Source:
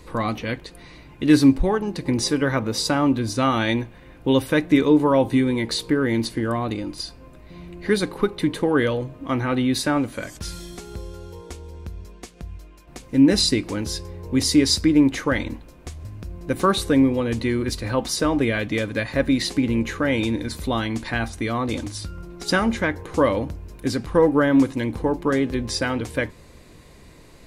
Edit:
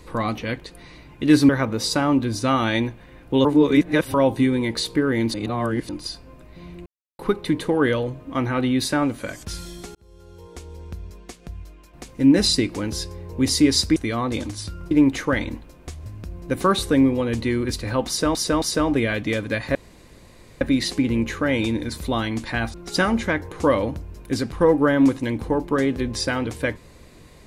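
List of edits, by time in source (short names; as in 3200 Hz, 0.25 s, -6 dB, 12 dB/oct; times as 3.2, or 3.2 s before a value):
1.49–2.43 cut
4.39–5.08 reverse
6.28–6.83 reverse
7.8–8.13 mute
10.89–11.68 fade in
18.07–18.34 loop, 3 plays
19.2 insert room tone 0.86 s
21.33–22.28 move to 14.9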